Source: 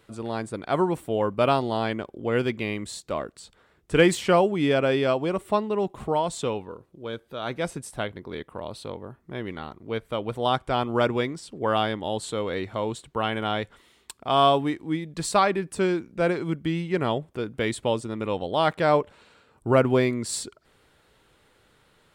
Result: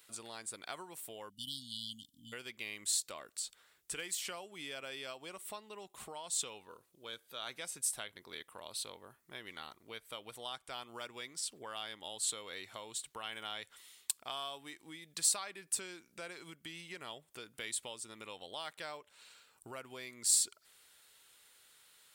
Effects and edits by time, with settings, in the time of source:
0:01.29–0:02.33: time-frequency box erased 290–2,900 Hz
whole clip: downward compressor 6 to 1, threshold −31 dBFS; first-order pre-emphasis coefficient 0.97; level +7 dB

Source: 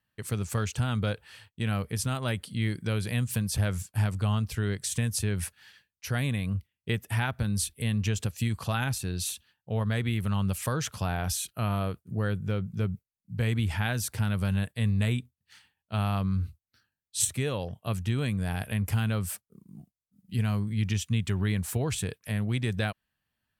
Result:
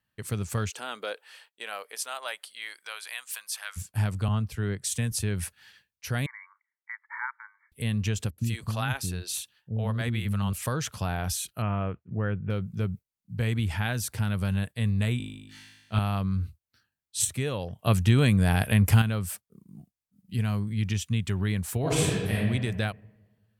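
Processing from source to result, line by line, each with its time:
0:00.69–0:03.76: high-pass filter 340 Hz → 1,100 Hz 24 dB per octave
0:04.28–0:05.12: multiband upward and downward expander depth 70%
0:06.26–0:07.72: linear-phase brick-wall band-pass 850–2,300 Hz
0:08.30–0:10.53: multiband delay without the direct sound lows, highs 80 ms, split 360 Hz
0:11.62–0:12.50: Butterworth low-pass 2,900 Hz 48 dB per octave
0:15.18–0:15.99: flutter between parallel walls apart 3.3 metres, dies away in 1.1 s
0:17.79–0:19.02: clip gain +8 dB
0:21.80–0:22.35: thrown reverb, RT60 1.4 s, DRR −6.5 dB

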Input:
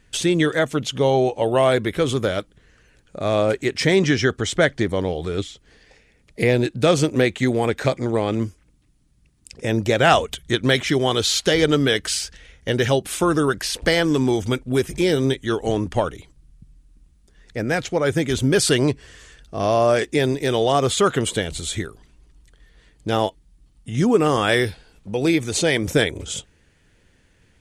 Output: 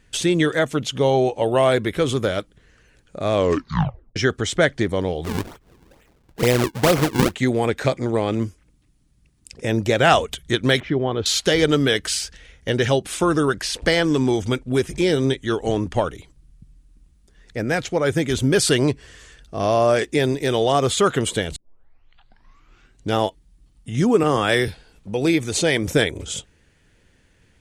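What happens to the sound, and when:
0:03.34: tape stop 0.82 s
0:05.24–0:07.35: sample-and-hold swept by an LFO 40×, swing 160% 2.2 Hz
0:10.80–0:11.26: head-to-tape spacing loss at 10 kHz 45 dB
0:12.70–0:16.09: low-pass filter 10,000 Hz
0:21.56: tape start 1.59 s
0:24.23–0:24.68: multiband upward and downward expander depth 40%

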